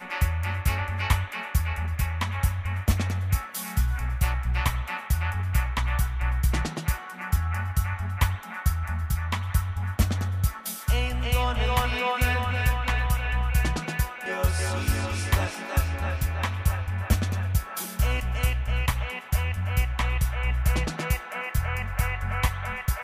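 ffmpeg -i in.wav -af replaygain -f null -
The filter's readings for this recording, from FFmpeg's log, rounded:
track_gain = +11.4 dB
track_peak = 0.296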